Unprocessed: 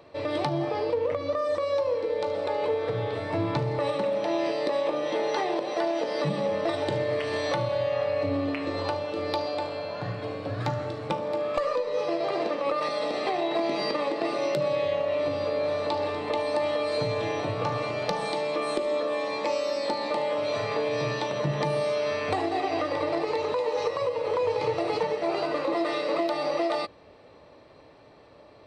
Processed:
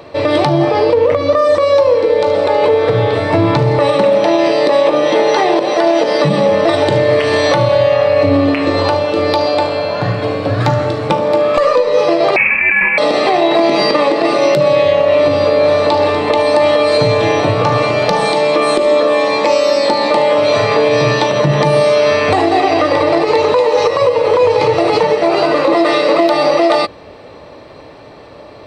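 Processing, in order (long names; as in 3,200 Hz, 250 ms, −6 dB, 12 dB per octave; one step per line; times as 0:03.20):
0:12.36–0:12.98: voice inversion scrambler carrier 2,900 Hz
boost into a limiter +18.5 dB
level −2 dB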